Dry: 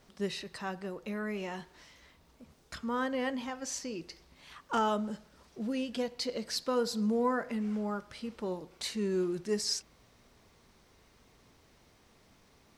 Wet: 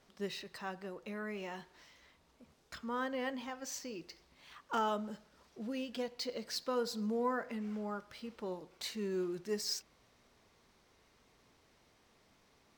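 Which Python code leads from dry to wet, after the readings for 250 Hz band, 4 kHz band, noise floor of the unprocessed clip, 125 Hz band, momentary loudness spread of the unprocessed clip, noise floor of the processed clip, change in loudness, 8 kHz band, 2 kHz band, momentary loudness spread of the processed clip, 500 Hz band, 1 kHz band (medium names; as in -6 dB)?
-6.5 dB, -4.5 dB, -64 dBFS, -7.0 dB, 13 LU, -69 dBFS, -5.0 dB, -5.5 dB, -4.0 dB, 14 LU, -4.5 dB, -4.0 dB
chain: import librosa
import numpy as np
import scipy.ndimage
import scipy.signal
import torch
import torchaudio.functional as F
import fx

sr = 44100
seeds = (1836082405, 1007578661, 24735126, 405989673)

y = fx.low_shelf(x, sr, hz=230.0, db=-6.0)
y = np.interp(np.arange(len(y)), np.arange(len(y))[::2], y[::2])
y = y * 10.0 ** (-3.5 / 20.0)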